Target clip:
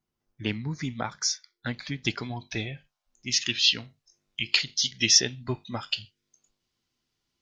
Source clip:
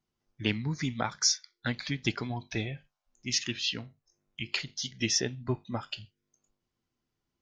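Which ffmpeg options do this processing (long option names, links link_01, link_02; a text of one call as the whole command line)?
ffmpeg -i in.wav -af "asetnsamples=nb_out_samples=441:pad=0,asendcmd='2.05 equalizer g 4.5;3.46 equalizer g 11',equalizer=frequency=4200:width=0.57:gain=-2" out.wav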